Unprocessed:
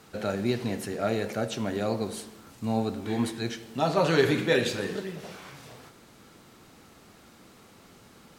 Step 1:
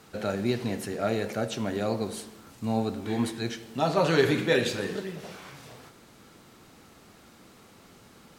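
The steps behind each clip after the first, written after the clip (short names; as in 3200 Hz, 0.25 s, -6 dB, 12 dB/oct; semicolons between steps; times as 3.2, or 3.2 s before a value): nothing audible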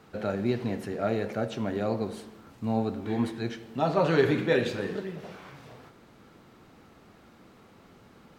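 bell 10000 Hz -12.5 dB 2.3 oct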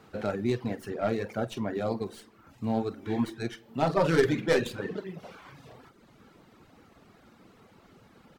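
tracing distortion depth 0.13 ms; doubler 48 ms -10.5 dB; reverb removal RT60 0.83 s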